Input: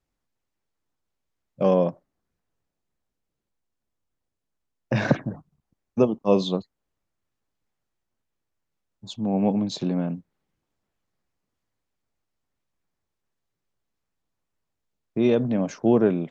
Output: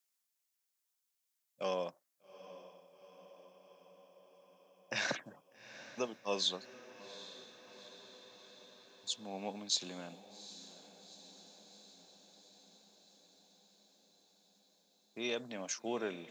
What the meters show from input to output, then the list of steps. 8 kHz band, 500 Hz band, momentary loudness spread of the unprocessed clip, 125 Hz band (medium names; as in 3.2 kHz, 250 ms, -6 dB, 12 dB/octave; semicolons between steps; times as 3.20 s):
no reading, -17.0 dB, 14 LU, -27.0 dB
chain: high-pass 90 Hz; differentiator; on a send: echo that smears into a reverb 805 ms, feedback 67%, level -15 dB; on the sum: trim +6 dB